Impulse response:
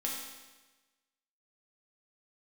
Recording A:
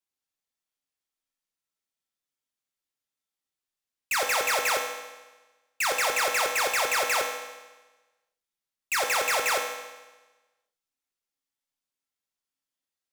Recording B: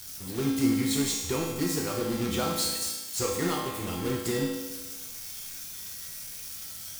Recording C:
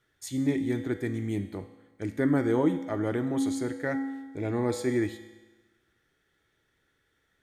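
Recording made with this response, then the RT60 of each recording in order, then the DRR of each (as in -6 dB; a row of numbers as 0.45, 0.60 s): B; 1.2, 1.2, 1.2 s; 1.5, -3.5, 8.0 dB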